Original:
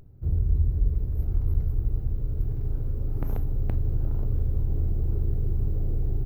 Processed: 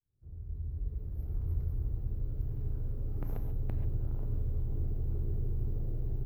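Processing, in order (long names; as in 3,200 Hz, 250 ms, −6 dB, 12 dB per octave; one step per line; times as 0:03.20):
fade in at the beginning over 1.57 s
reverb whose tail is shaped and stops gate 160 ms rising, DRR 6.5 dB
level −8 dB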